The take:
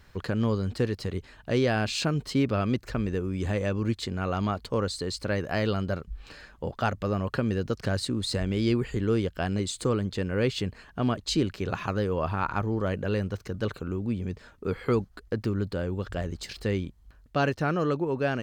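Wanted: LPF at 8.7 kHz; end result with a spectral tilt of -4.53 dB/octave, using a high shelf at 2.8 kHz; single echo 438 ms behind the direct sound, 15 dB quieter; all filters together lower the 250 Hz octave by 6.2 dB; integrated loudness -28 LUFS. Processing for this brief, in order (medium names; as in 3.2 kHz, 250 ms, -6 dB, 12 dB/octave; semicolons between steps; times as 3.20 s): low-pass 8.7 kHz; peaking EQ 250 Hz -8.5 dB; treble shelf 2.8 kHz +7 dB; delay 438 ms -15 dB; trim +2.5 dB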